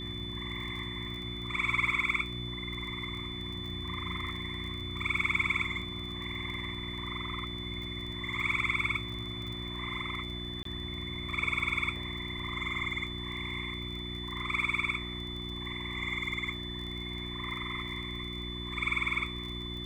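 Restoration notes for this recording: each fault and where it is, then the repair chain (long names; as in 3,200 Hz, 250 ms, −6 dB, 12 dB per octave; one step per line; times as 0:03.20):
surface crackle 26 per second −39 dBFS
mains hum 60 Hz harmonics 6 −41 dBFS
whistle 3,500 Hz −40 dBFS
0:10.63–0:10.65: drop-out 23 ms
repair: click removal
hum removal 60 Hz, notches 6
notch filter 3,500 Hz, Q 30
repair the gap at 0:10.63, 23 ms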